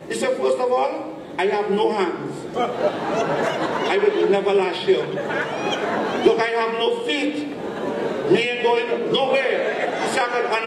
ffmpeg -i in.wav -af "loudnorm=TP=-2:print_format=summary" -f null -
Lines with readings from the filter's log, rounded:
Input Integrated:    -21.1 LUFS
Input True Peak:      -4.3 dBTP
Input LRA:             2.2 LU
Input Threshold:     -31.1 LUFS